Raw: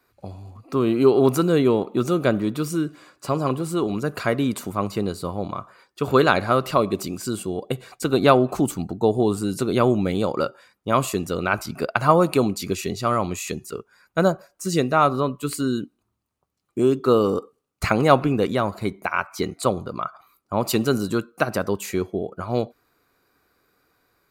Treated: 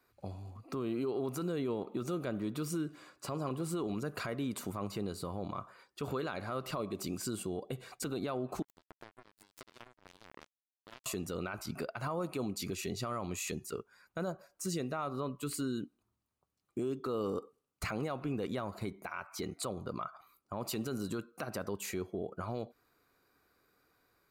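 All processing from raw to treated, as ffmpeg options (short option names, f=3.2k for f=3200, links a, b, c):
-filter_complex "[0:a]asettb=1/sr,asplit=3[a][b][c];[a]atrim=end=8.624[d];[b]atrim=start=8.62:end=11.06,asetpts=PTS-STARTPTS,afade=t=in:d=0.004:c=qsin,afade=t=out:st=2.436:d=0.004:c=qsin,aecho=1:1:3:0.71,atrim=end_sample=107604,acompressor=threshold=-30dB:ratio=10:attack=3.2:release=140:knee=1:detection=peak,acrusher=bits=3:mix=0:aa=0.5[e];[c]atrim=start=11.056[f];[d][e]acrossfade=d=0.004:c1=hsin:c2=qsin[g];[g][f]acrossfade=d=0.004:c1=qsin:c2=hsin,acompressor=threshold=-25dB:ratio=4,alimiter=limit=-21dB:level=0:latency=1:release=11,volume=-6.5dB"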